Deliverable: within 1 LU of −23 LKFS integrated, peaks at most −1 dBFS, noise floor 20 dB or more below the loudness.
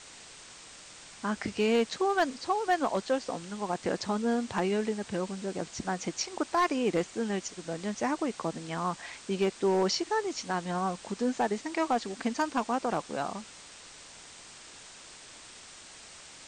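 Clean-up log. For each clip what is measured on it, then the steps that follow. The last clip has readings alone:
share of clipped samples 0.3%; peaks flattened at −19.5 dBFS; background noise floor −50 dBFS; target noise floor −51 dBFS; integrated loudness −31.0 LKFS; sample peak −19.5 dBFS; target loudness −23.0 LKFS
→ clipped peaks rebuilt −19.5 dBFS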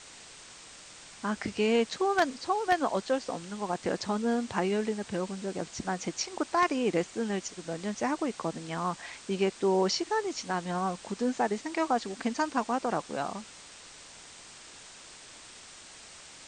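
share of clipped samples 0.0%; background noise floor −50 dBFS; target noise floor −51 dBFS
→ broadband denoise 6 dB, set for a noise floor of −50 dBFS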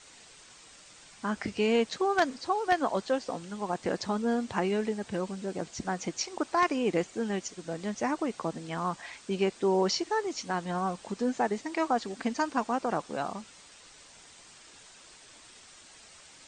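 background noise floor −54 dBFS; integrated loudness −31.0 LKFS; sample peak −10.5 dBFS; target loudness −23.0 LKFS
→ level +8 dB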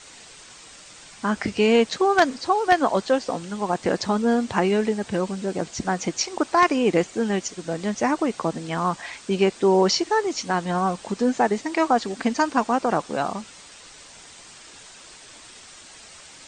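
integrated loudness −23.0 LKFS; sample peak −2.5 dBFS; background noise floor −46 dBFS

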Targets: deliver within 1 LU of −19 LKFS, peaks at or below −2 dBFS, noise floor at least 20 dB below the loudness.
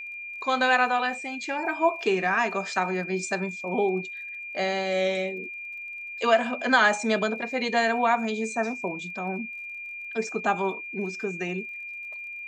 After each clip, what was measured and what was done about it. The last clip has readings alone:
crackle rate 28 per second; interfering tone 2,400 Hz; level of the tone −35 dBFS; integrated loudness −26.5 LKFS; sample peak −7.5 dBFS; target loudness −19.0 LKFS
→ click removal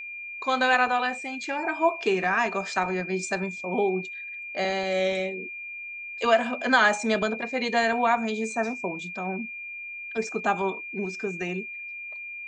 crackle rate 0 per second; interfering tone 2,400 Hz; level of the tone −35 dBFS
→ notch filter 2,400 Hz, Q 30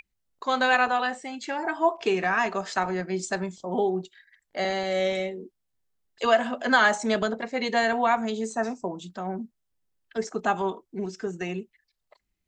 interfering tone none found; integrated loudness −26.5 LKFS; sample peak −8.0 dBFS; target loudness −19.0 LKFS
→ level +7.5 dB
brickwall limiter −2 dBFS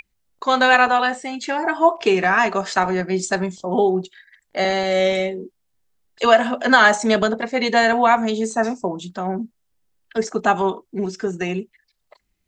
integrated loudness −19.0 LKFS; sample peak −2.0 dBFS; background noise floor −71 dBFS

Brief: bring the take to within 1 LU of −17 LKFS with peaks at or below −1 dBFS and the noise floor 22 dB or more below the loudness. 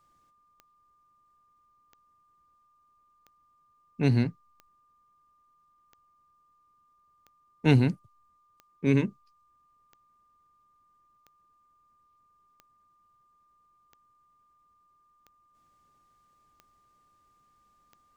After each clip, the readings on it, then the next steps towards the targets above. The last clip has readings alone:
number of clicks 14; interfering tone 1,200 Hz; level of the tone −64 dBFS; integrated loudness −26.5 LKFS; sample peak −9.5 dBFS; target loudness −17.0 LKFS
→ click removal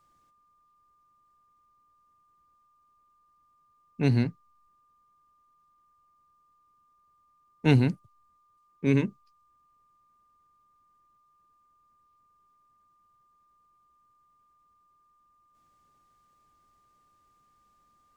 number of clicks 0; interfering tone 1,200 Hz; level of the tone −64 dBFS
→ notch filter 1,200 Hz, Q 30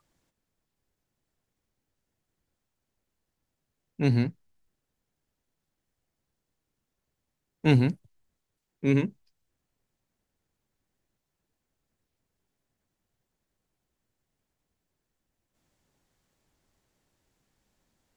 interfering tone none found; integrated loudness −26.5 LKFS; sample peak −9.5 dBFS; target loudness −17.0 LKFS
→ level +9.5 dB
brickwall limiter −1 dBFS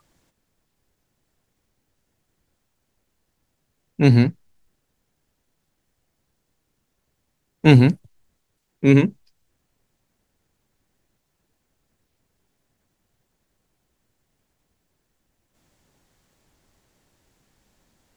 integrated loudness −17.0 LKFS; sample peak −1.0 dBFS; background noise floor −74 dBFS

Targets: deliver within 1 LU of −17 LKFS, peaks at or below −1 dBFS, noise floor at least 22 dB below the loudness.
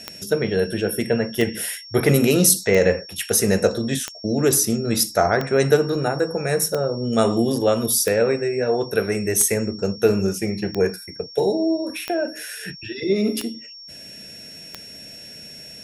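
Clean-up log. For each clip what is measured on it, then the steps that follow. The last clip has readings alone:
number of clicks 12; interfering tone 5,500 Hz; level of the tone −38 dBFS; integrated loudness −20.5 LKFS; sample peak −2.0 dBFS; target loudness −17.0 LKFS
→ click removal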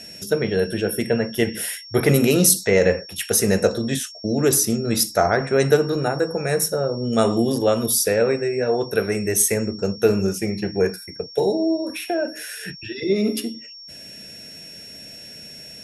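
number of clicks 0; interfering tone 5,500 Hz; level of the tone −38 dBFS
→ notch filter 5,500 Hz, Q 30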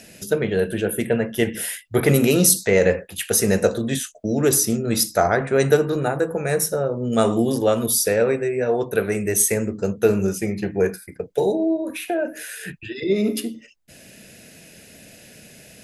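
interfering tone none found; integrated loudness −20.5 LKFS; sample peak −2.0 dBFS; target loudness −17.0 LKFS
→ level +3.5 dB
brickwall limiter −1 dBFS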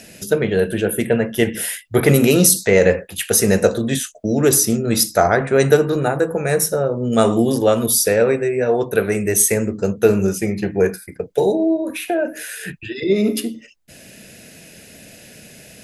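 integrated loudness −17.0 LKFS; sample peak −1.0 dBFS; background noise floor −44 dBFS

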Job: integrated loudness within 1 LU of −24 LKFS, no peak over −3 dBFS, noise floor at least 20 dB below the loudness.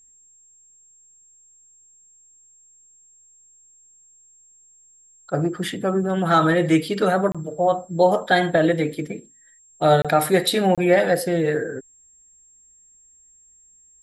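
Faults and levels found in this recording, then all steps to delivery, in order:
number of dropouts 3; longest dropout 26 ms; interfering tone 7,500 Hz; level of the tone −51 dBFS; integrated loudness −20.0 LKFS; sample peak −5.0 dBFS; target loudness −24.0 LKFS
→ repair the gap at 0:07.32/0:10.02/0:10.75, 26 ms
notch filter 7,500 Hz, Q 30
level −4 dB

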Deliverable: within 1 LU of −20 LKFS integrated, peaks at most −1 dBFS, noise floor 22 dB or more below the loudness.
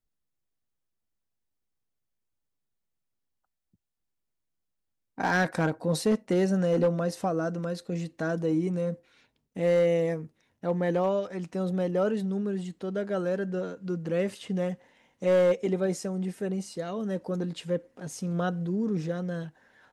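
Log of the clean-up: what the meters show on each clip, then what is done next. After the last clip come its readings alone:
share of clipped samples 0.4%; peaks flattened at −17.5 dBFS; integrated loudness −29.0 LKFS; sample peak −17.5 dBFS; target loudness −20.0 LKFS
→ clipped peaks rebuilt −17.5 dBFS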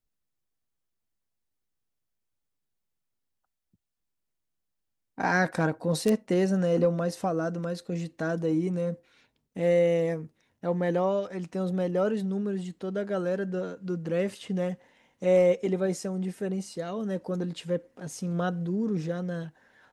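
share of clipped samples 0.0%; integrated loudness −28.5 LKFS; sample peak −8.5 dBFS; target loudness −20.0 LKFS
→ level +8.5 dB
brickwall limiter −1 dBFS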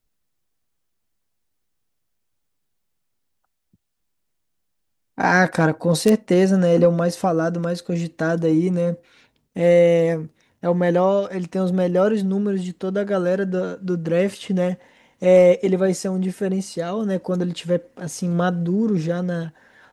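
integrated loudness −20.0 LKFS; sample peak −1.0 dBFS; background noise floor −73 dBFS

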